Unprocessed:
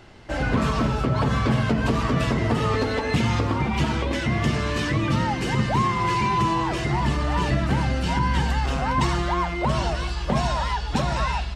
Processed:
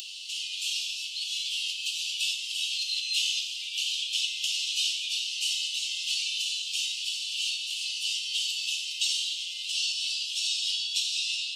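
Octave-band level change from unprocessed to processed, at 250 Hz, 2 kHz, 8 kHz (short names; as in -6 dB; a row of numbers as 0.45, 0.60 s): under -40 dB, -6.5 dB, +8.5 dB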